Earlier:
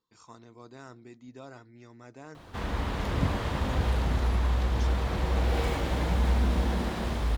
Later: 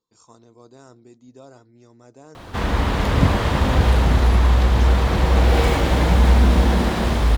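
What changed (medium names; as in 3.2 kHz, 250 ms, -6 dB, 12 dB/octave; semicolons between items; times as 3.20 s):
speech: add graphic EQ 500/2000/8000 Hz +4/-9/+7 dB; background +11.0 dB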